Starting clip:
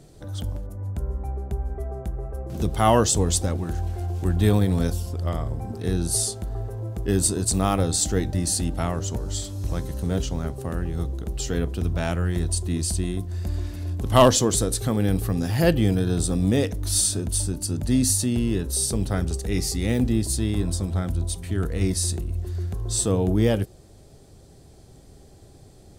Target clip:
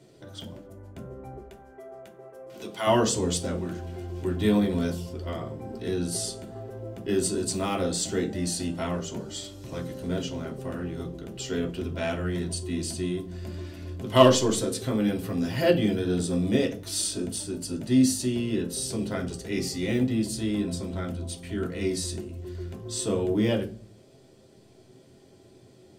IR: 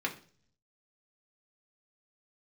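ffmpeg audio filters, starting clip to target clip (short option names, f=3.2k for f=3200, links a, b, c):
-filter_complex "[0:a]asettb=1/sr,asplit=3[a][b][c];[a]atrim=end=1.394[d];[b]atrim=start=1.39:end=2.87,asetpts=PTS-STARTPTS,afade=t=in:d=0.004:c=qsin,afade=t=out:st=1.476:d=0.004:c=qsin,highpass=f=850:p=1[e];[c]atrim=start=2.866[f];[d][e]acrossfade=d=0.004:c1=hsin:c2=qsin[g];[g][f]acrossfade=d=0.004:c1=qsin:c2=hsin[h];[1:a]atrim=start_sample=2205,asetrate=57330,aresample=44100[i];[h][i]afir=irnorm=-1:irlink=0,volume=-4.5dB"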